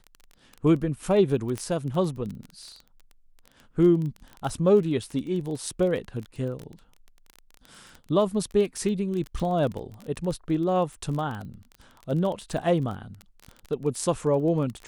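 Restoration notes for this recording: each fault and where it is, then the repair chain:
crackle 22/s -31 dBFS
1.58 pop -17 dBFS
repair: de-click

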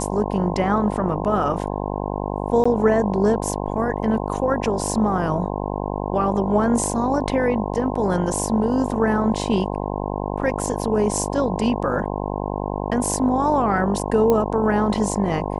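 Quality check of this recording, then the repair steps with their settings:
buzz 50 Hz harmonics 21 -26 dBFS
2.64–2.65 gap 15 ms
14.3 pop -8 dBFS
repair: de-click; de-hum 50 Hz, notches 21; interpolate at 2.64, 15 ms

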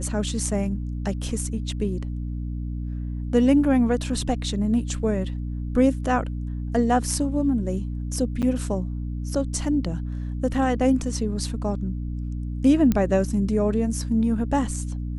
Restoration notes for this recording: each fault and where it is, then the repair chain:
hum 60 Hz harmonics 5 -29 dBFS
8.42–8.43 gap 7.3 ms
12.92 pop -10 dBFS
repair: de-click; de-hum 60 Hz, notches 5; interpolate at 8.42, 7.3 ms

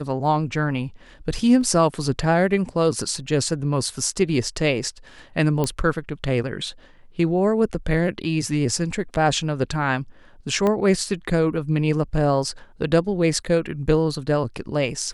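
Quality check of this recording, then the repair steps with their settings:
5.64 pop -10 dBFS
10.67 pop -11 dBFS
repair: de-click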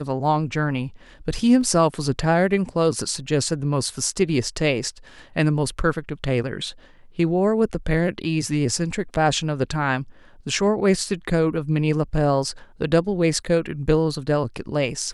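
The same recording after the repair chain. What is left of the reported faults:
10.67 pop

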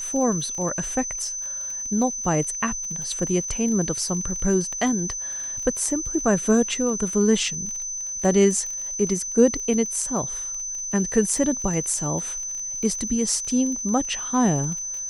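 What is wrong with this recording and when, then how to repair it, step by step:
crackle 35/s -31 dBFS
tone 6100 Hz -28 dBFS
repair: de-click; notch 6100 Hz, Q 30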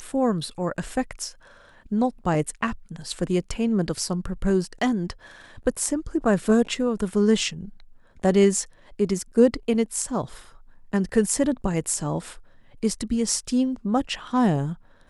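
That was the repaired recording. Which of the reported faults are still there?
none

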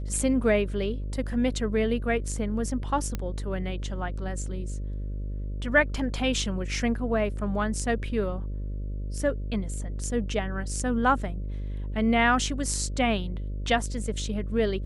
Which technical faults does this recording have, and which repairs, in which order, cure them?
buzz 50 Hz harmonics 12 -32 dBFS
3.15 pop -16 dBFS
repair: de-click; de-hum 50 Hz, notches 12

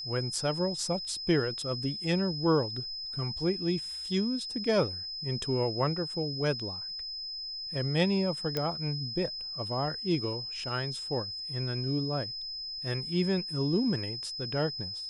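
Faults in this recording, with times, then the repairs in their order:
tone 5100 Hz -36 dBFS
8.57 pop -16 dBFS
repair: de-click; notch 5100 Hz, Q 30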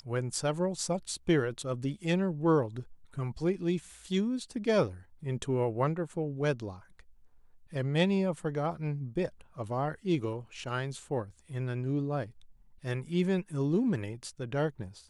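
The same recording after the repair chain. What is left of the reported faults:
none

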